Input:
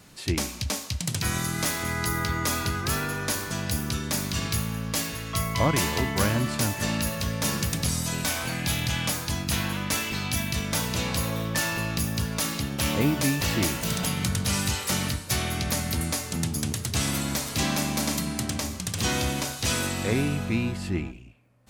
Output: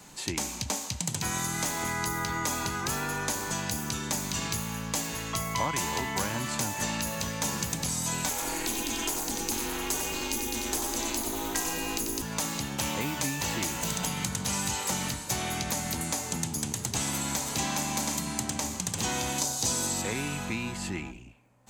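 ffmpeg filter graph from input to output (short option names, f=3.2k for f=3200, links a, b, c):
-filter_complex "[0:a]asettb=1/sr,asplit=3[a][b][c];[a]atrim=end=8.294[d];[b]atrim=start=8.29:end=12.22,asetpts=PTS-STARTPTS,afade=t=in:d=0.004:c=qsin,afade=t=out:st=3.926:d=0.004:c=qsin,aemphasis=mode=production:type=cd,aecho=1:1:91:0.631,atrim=end_sample=173313,aeval=exprs='val(0)*sin(2*PI*160*n/s)':c=same[e];[c]atrim=start=12.216[f];[d][e]acrossfade=d=0.004:c1=hsin:c2=qsin[g];[g][f]acrossfade=d=0.004:c1=qsin:c2=hsin,asettb=1/sr,asplit=3[h][i][j];[h]atrim=end=19.384[k];[i]atrim=start=19.38:end=20.02,asetpts=PTS-STARTPTS,afade=t=in:d=0.004:c=qsin,afade=t=out:st=0.636:d=0.004:c=qsin,highpass=46,highshelf=f=3.5k:t=q:w=1.5:g=7.5[l];[j]atrim=start=20.016[m];[k][l]acrossfade=d=0.004:c1=hsin:c2=qsin[n];[n][m]acrossfade=d=0.004:c1=qsin:c2=hsin,equalizer=f=87:w=1.6:g=-8,acrossover=split=96|1000[o][p][q];[o]acompressor=threshold=-45dB:ratio=4[r];[p]acompressor=threshold=-35dB:ratio=4[s];[q]acompressor=threshold=-33dB:ratio=4[t];[r][s][t]amix=inputs=3:normalize=0,superequalizer=9b=2:15b=2,volume=1dB"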